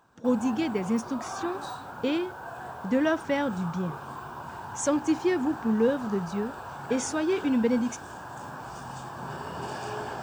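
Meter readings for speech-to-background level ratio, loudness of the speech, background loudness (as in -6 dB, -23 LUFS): 10.5 dB, -28.5 LUFS, -39.0 LUFS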